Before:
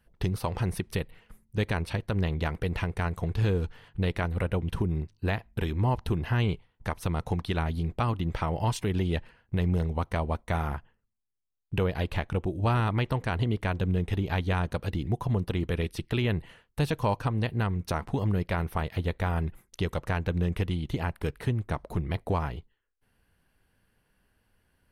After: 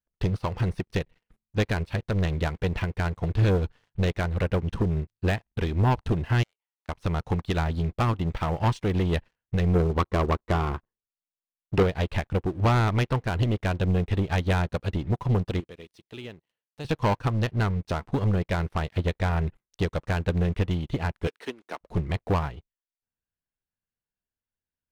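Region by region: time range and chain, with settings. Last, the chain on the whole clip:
6.43–6.89 overloaded stage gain 25 dB + HPF 610 Hz 24 dB/oct + compressor 4:1, threshold -56 dBFS
9.75–11.83 air absorption 260 m + small resonant body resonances 370/1100/4000 Hz, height 10 dB, ringing for 20 ms
15.6–16.85 HPF 630 Hz 6 dB/oct + bell 1500 Hz -9.5 dB 2.2 oct
21.27–21.81 HPF 280 Hz 24 dB/oct + high shelf 2400 Hz +8.5 dB
whole clip: LPF 5900 Hz; sample leveller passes 3; upward expander 2.5:1, over -30 dBFS

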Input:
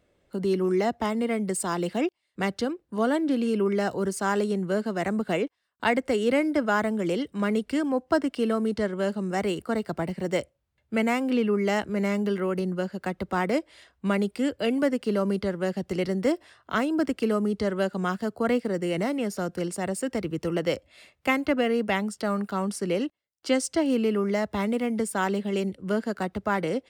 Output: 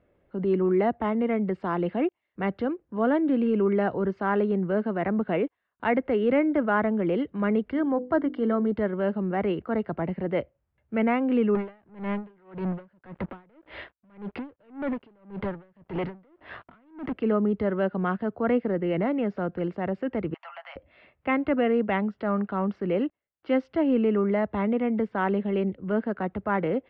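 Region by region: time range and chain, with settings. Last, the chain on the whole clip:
7.71–8.72 Butterworth band-stop 2600 Hz, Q 4.1 + notches 50/100/150/200/250/300/350/400/450/500 Hz
11.55–17.13 compressor 10:1, threshold -35 dBFS + sample leveller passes 5 + dB-linear tremolo 1.8 Hz, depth 35 dB
20.34–20.76 steep high-pass 690 Hz 72 dB/oct + comb 7.3 ms, depth 47% + compressor 4:1, threshold -35 dBFS
whole clip: transient shaper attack -4 dB, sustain 0 dB; Bessel low-pass 1800 Hz, order 6; gain +2 dB

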